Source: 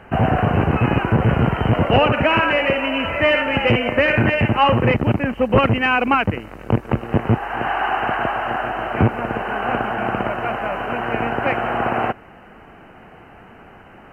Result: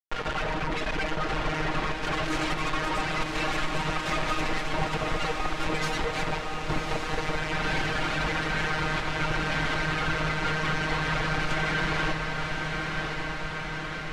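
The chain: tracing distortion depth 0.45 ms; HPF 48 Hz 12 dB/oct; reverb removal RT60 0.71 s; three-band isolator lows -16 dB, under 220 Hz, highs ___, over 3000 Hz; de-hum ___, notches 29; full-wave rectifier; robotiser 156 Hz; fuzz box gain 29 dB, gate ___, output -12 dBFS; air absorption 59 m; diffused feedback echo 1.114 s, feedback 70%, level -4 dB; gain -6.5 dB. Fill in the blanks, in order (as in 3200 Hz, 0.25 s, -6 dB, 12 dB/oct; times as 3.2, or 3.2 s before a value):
-14 dB, 358.7 Hz, -32 dBFS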